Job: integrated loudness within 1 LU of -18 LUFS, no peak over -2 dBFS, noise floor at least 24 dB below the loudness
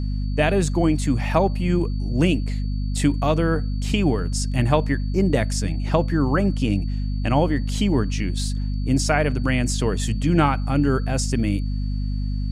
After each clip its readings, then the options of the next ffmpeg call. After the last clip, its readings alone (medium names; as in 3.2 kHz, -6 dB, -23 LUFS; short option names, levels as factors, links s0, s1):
hum 50 Hz; highest harmonic 250 Hz; hum level -22 dBFS; steady tone 4.5 kHz; tone level -48 dBFS; loudness -22.0 LUFS; peak level -5.0 dBFS; loudness target -18.0 LUFS
-> -af "bandreject=f=50:t=h:w=4,bandreject=f=100:t=h:w=4,bandreject=f=150:t=h:w=4,bandreject=f=200:t=h:w=4,bandreject=f=250:t=h:w=4"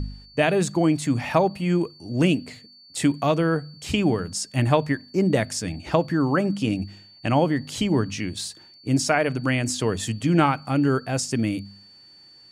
hum not found; steady tone 4.5 kHz; tone level -48 dBFS
-> -af "bandreject=f=4500:w=30"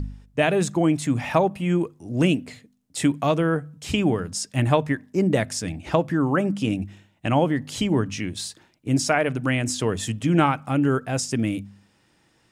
steady tone not found; loudness -23.5 LUFS; peak level -5.0 dBFS; loudness target -18.0 LUFS
-> -af "volume=1.88,alimiter=limit=0.794:level=0:latency=1"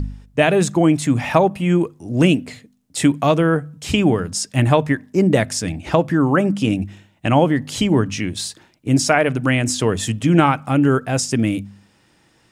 loudness -18.0 LUFS; peak level -2.0 dBFS; noise floor -58 dBFS